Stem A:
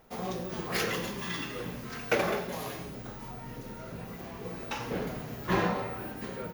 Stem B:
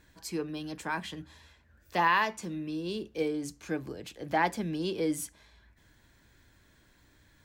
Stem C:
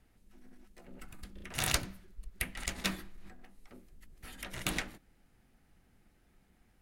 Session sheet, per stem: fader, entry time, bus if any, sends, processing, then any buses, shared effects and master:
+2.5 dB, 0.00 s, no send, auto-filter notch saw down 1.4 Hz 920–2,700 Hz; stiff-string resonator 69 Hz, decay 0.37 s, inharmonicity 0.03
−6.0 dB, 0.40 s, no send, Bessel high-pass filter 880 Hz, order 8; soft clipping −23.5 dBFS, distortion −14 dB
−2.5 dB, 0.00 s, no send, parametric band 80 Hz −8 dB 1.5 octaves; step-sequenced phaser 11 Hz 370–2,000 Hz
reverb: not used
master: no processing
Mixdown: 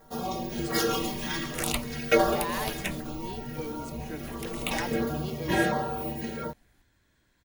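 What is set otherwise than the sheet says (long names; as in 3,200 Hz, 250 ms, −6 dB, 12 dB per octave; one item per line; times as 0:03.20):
stem A +2.5 dB → +14.0 dB
stem B: missing Bessel high-pass filter 880 Hz, order 8
stem C −2.5 dB → +4.0 dB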